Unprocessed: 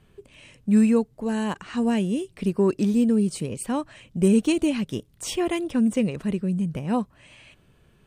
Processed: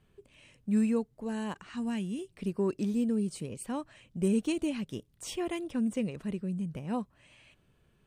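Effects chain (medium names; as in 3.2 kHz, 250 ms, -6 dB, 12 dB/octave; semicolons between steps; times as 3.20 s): 1.69–2.19 s: peaking EQ 530 Hz -10.5 dB 0.88 oct; trim -9 dB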